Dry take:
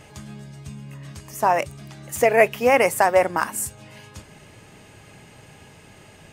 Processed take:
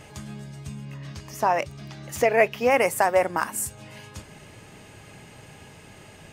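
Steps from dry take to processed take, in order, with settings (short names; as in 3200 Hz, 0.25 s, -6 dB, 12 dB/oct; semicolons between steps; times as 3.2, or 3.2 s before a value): 0.85–2.71 resonant high shelf 6700 Hz -6 dB, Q 1.5; in parallel at -2 dB: compressor, threshold -29 dBFS, peak gain reduction 18 dB; on the sum: gain -4.5 dB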